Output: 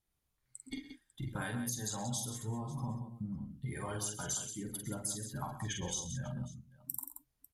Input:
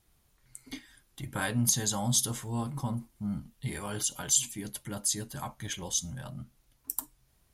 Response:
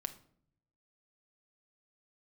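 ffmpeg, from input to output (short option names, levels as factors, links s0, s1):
-af "afftdn=nr=18:nf=-40,acompressor=threshold=0.0126:ratio=10,aecho=1:1:46|113|130|178|547:0.596|0.15|0.168|0.355|0.112,volume=1.19"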